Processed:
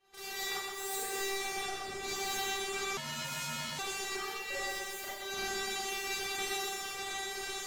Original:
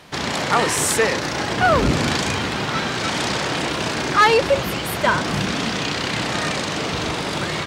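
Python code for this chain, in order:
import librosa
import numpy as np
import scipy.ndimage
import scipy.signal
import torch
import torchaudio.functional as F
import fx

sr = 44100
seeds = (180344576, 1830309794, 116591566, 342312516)

p1 = fx.cheby_harmonics(x, sr, harmonics=(7,), levels_db=(-15,), full_scale_db=-6.0)
p2 = fx.comb_fb(p1, sr, f0_hz=390.0, decay_s=0.53, harmonics='all', damping=0.0, mix_pct=100)
p3 = 10.0 ** (-37.5 / 20.0) * np.tanh(p2 / 10.0 ** (-37.5 / 20.0))
p4 = p2 + (p3 * librosa.db_to_amplitude(-4.0))
p5 = fx.over_compress(p4, sr, threshold_db=-42.0, ratio=-1.0)
p6 = p5 + fx.echo_feedback(p5, sr, ms=125, feedback_pct=51, wet_db=-4.5, dry=0)
p7 = fx.rev_schroeder(p6, sr, rt60_s=0.42, comb_ms=31, drr_db=-6.5)
p8 = fx.ring_mod(p7, sr, carrier_hz=540.0, at=(2.97, 3.79))
y = p8 * librosa.db_to_amplitude(-2.0)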